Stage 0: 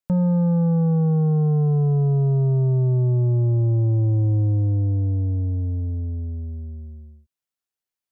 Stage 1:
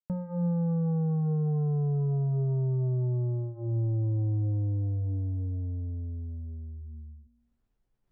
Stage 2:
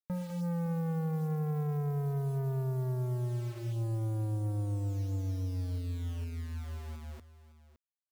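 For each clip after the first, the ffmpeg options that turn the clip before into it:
ffmpeg -i in.wav -af "anlmdn=6.31,bandreject=frequency=59.01:width_type=h:width=4,bandreject=frequency=118.02:width_type=h:width=4,bandreject=frequency=177.03:width_type=h:width=4,bandreject=frequency=236.04:width_type=h:width=4,bandreject=frequency=295.05:width_type=h:width=4,bandreject=frequency=354.06:width_type=h:width=4,bandreject=frequency=413.07:width_type=h:width=4,bandreject=frequency=472.08:width_type=h:width=4,bandreject=frequency=531.09:width_type=h:width=4,bandreject=frequency=590.1:width_type=h:width=4,bandreject=frequency=649.11:width_type=h:width=4,bandreject=frequency=708.12:width_type=h:width=4,bandreject=frequency=767.13:width_type=h:width=4,bandreject=frequency=826.14:width_type=h:width=4,bandreject=frequency=885.15:width_type=h:width=4,bandreject=frequency=944.16:width_type=h:width=4,bandreject=frequency=1003.17:width_type=h:width=4,bandreject=frequency=1062.18:width_type=h:width=4,bandreject=frequency=1121.19:width_type=h:width=4,bandreject=frequency=1180.2:width_type=h:width=4,bandreject=frequency=1239.21:width_type=h:width=4,bandreject=frequency=1298.22:width_type=h:width=4,bandreject=frequency=1357.23:width_type=h:width=4,bandreject=frequency=1416.24:width_type=h:width=4,areverse,acompressor=mode=upward:threshold=-28dB:ratio=2.5,areverse,volume=-8.5dB" out.wav
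ffmpeg -i in.wav -af "acrusher=bits=7:mix=0:aa=0.000001,asoftclip=type=tanh:threshold=-31dB,aecho=1:1:562:0.168" out.wav

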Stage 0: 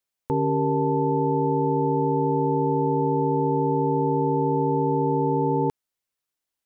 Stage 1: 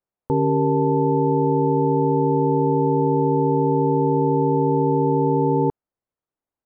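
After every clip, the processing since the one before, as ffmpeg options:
ffmpeg -i in.wav -af "lowpass=1000,volume=4dB" out.wav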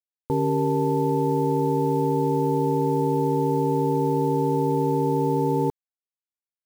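ffmpeg -i in.wav -af "acrusher=bits=6:mix=0:aa=0.000001,volume=-3.5dB" out.wav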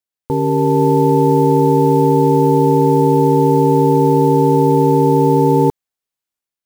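ffmpeg -i in.wav -af "dynaudnorm=framelen=420:gausssize=3:maxgain=5dB,volume=5.5dB" out.wav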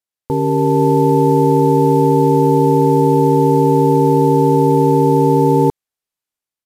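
ffmpeg -i in.wav -af "aresample=32000,aresample=44100" out.wav

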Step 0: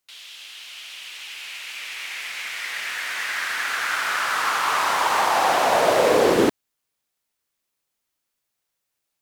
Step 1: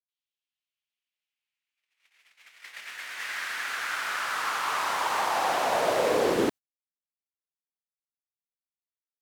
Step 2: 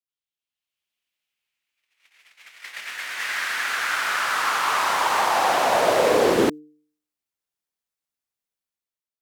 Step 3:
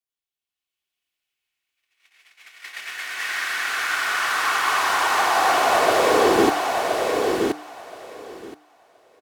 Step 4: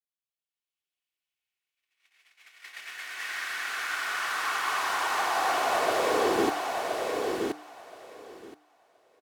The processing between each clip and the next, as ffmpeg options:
ffmpeg -i in.wav -af "agate=range=-48dB:threshold=-28dB:ratio=16:detection=peak,volume=-7dB" out.wav
ffmpeg -i in.wav -af "bandreject=frequency=150.9:width_type=h:width=4,bandreject=frequency=301.8:width_type=h:width=4,bandreject=frequency=452.7:width_type=h:width=4,dynaudnorm=framelen=190:gausssize=7:maxgain=9.5dB,volume=-2.5dB" out.wav
ffmpeg -i in.wav -filter_complex "[0:a]aecho=1:1:2.7:0.34,asplit=2[link_01][link_02];[link_02]aecho=0:1:1023|2046|3069:0.631|0.0946|0.0142[link_03];[link_01][link_03]amix=inputs=2:normalize=0" out.wav
ffmpeg -i in.wav -af "lowshelf=frequency=130:gain=-3.5,volume=-8dB" out.wav

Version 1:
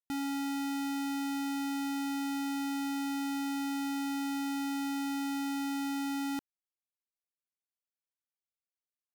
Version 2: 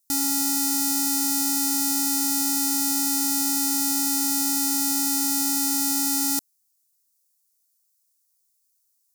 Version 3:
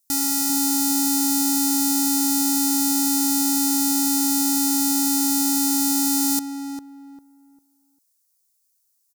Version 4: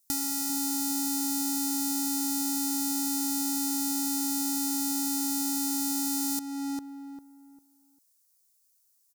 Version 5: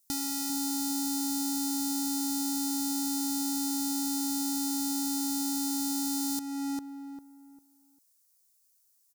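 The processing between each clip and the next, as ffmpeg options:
ffmpeg -i in.wav -af "aexciter=amount=6.8:drive=7.7:freq=4400,volume=4.5dB" out.wav
ffmpeg -i in.wav -filter_complex "[0:a]asplit=2[link_01][link_02];[link_02]adelay=399,lowpass=frequency=1100:poles=1,volume=-4dB,asplit=2[link_03][link_04];[link_04]adelay=399,lowpass=frequency=1100:poles=1,volume=0.29,asplit=2[link_05][link_06];[link_06]adelay=399,lowpass=frequency=1100:poles=1,volume=0.29,asplit=2[link_07][link_08];[link_08]adelay=399,lowpass=frequency=1100:poles=1,volume=0.29[link_09];[link_01][link_03][link_05][link_07][link_09]amix=inputs=5:normalize=0,volume=1.5dB" out.wav
ffmpeg -i in.wav -af "acompressor=threshold=-32dB:ratio=2" out.wav
ffmpeg -i in.wav -af "asoftclip=type=tanh:threshold=-21dB" out.wav

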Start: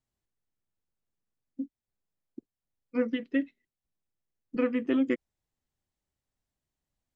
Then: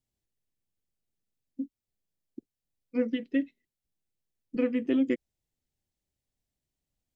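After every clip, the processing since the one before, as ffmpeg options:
ffmpeg -i in.wav -af "equalizer=frequency=1200:width_type=o:width=1.1:gain=-10,volume=1dB" out.wav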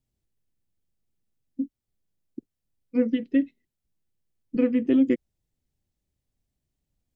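ffmpeg -i in.wav -af "lowshelf=frequency=400:gain=8.5" out.wav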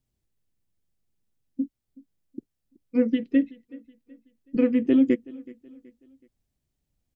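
ffmpeg -i in.wav -af "aecho=1:1:375|750|1125:0.0794|0.0318|0.0127,volume=1dB" out.wav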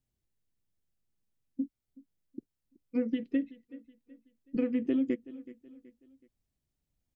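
ffmpeg -i in.wav -af "acompressor=threshold=-20dB:ratio=6,volume=-5dB" out.wav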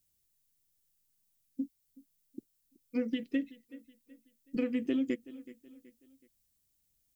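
ffmpeg -i in.wav -af "crystalizer=i=5:c=0,volume=-2.5dB" out.wav

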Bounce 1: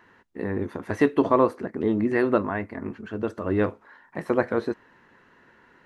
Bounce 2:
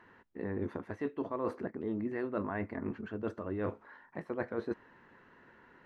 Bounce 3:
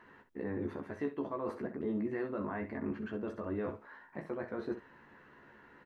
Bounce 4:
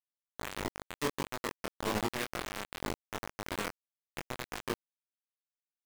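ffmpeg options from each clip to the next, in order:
ffmpeg -i in.wav -af "lowpass=frequency=2600:poles=1,areverse,acompressor=threshold=-29dB:ratio=12,areverse,volume=-2.5dB" out.wav
ffmpeg -i in.wav -filter_complex "[0:a]alimiter=level_in=4.5dB:limit=-24dB:level=0:latency=1:release=67,volume=-4.5dB,asplit=2[link_01][link_02];[link_02]aecho=0:1:14|64:0.562|0.299[link_03];[link_01][link_03]amix=inputs=2:normalize=0" out.wav
ffmpeg -i in.wav -af "acrusher=bits=4:mix=0:aa=0.000001,flanger=delay=19:depth=4.6:speed=1.5,volume=4.5dB" out.wav

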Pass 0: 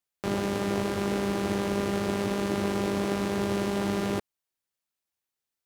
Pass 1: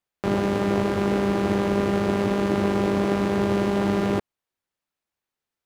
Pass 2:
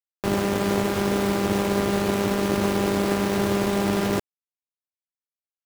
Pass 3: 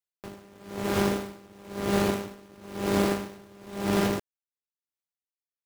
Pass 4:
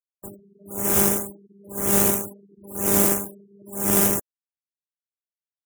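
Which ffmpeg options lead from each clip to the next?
ffmpeg -i in.wav -af "highshelf=frequency=3800:gain=-11,volume=6dB" out.wav
ffmpeg -i in.wav -af "aeval=exprs='sgn(val(0))*max(abs(val(0))-0.00841,0)':channel_layout=same,acrusher=bits=4:mix=0:aa=0.000001" out.wav
ffmpeg -i in.wav -af "aeval=exprs='val(0)*pow(10,-29*(0.5-0.5*cos(2*PI*1*n/s))/20)':channel_layout=same" out.wav
ffmpeg -i in.wav -af "aexciter=amount=8.2:drive=6.1:freq=6400,afftfilt=real='re*gte(hypot(re,im),0.0158)':imag='im*gte(hypot(re,im),0.0158)':win_size=1024:overlap=0.75,volume=1.5dB" out.wav

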